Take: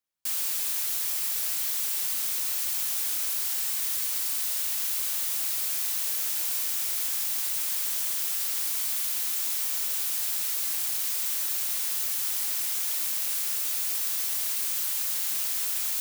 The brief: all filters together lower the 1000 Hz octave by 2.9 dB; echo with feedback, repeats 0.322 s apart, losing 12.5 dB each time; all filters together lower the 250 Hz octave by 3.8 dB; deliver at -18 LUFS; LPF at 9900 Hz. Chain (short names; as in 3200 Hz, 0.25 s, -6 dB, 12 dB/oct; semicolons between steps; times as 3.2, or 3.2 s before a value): LPF 9900 Hz; bell 250 Hz -5 dB; bell 1000 Hz -3.5 dB; feedback echo 0.322 s, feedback 24%, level -12.5 dB; gain +14 dB